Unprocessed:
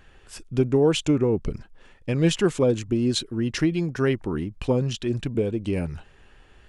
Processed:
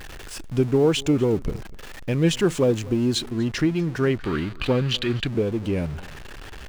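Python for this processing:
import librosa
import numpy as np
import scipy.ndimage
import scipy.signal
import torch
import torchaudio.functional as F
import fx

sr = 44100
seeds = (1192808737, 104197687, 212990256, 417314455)

y = x + 0.5 * 10.0 ** (-33.5 / 20.0) * np.sign(x)
y = y + 10.0 ** (-21.5 / 20.0) * np.pad(y, (int(244 * sr / 1000.0), 0))[:len(y)]
y = fx.spec_box(y, sr, start_s=4.19, length_s=1.08, low_hz=1100.0, high_hz=4900.0, gain_db=9)
y = fx.high_shelf(y, sr, hz=7900.0, db=fx.steps((0.0, -2.5), (3.2, -9.5)))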